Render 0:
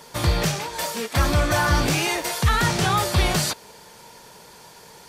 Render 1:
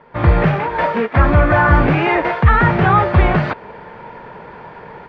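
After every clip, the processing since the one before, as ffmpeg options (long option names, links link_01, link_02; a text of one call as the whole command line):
ffmpeg -i in.wav -af "lowpass=frequency=2100:width=0.5412,lowpass=frequency=2100:width=1.3066,dynaudnorm=framelen=110:gausssize=3:maxgain=13dB" out.wav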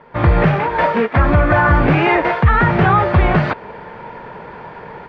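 ffmpeg -i in.wav -af "alimiter=limit=-5.5dB:level=0:latency=1:release=141,volume=2dB" out.wav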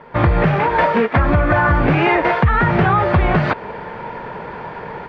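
ffmpeg -i in.wav -af "acompressor=threshold=-15dB:ratio=4,volume=3.5dB" out.wav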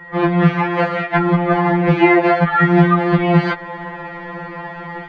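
ffmpeg -i in.wav -af "aeval=exprs='val(0)+0.00631*sin(2*PI*1900*n/s)':channel_layout=same,afftfilt=real='re*2.83*eq(mod(b,8),0)':imag='im*2.83*eq(mod(b,8),0)':win_size=2048:overlap=0.75,volume=2.5dB" out.wav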